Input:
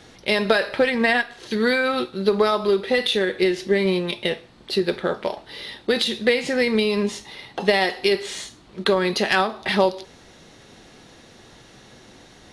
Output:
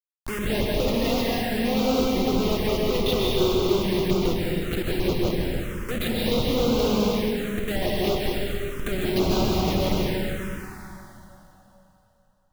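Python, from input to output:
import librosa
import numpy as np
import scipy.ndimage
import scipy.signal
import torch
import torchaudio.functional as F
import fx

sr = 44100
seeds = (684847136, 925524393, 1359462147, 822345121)

y = fx.schmitt(x, sr, flips_db=-21.5)
y = fx.rev_plate(y, sr, seeds[0], rt60_s=3.4, hf_ratio=0.9, predelay_ms=115, drr_db=-4.5)
y = fx.env_phaser(y, sr, low_hz=380.0, high_hz=1800.0, full_db=-14.5)
y = F.gain(torch.from_numpy(y), -2.5).numpy()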